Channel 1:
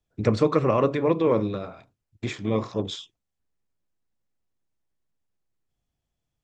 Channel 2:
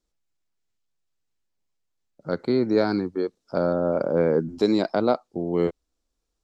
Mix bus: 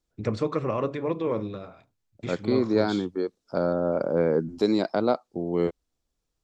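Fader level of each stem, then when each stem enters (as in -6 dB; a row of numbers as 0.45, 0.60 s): -6.0, -2.0 dB; 0.00, 0.00 s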